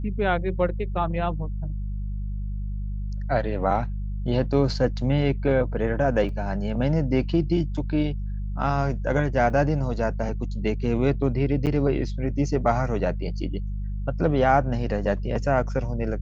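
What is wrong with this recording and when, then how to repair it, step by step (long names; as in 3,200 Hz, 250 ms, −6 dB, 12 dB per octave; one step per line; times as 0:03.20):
mains hum 50 Hz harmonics 4 −29 dBFS
0:06.29: drop-out 2.8 ms
0:09.50: drop-out 4.9 ms
0:11.66–0:11.67: drop-out 8.1 ms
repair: hum removal 50 Hz, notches 4
repair the gap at 0:06.29, 2.8 ms
repair the gap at 0:09.50, 4.9 ms
repair the gap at 0:11.66, 8.1 ms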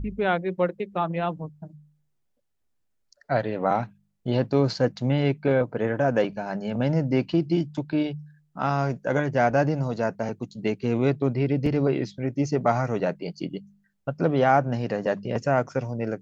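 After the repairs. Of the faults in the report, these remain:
none of them is left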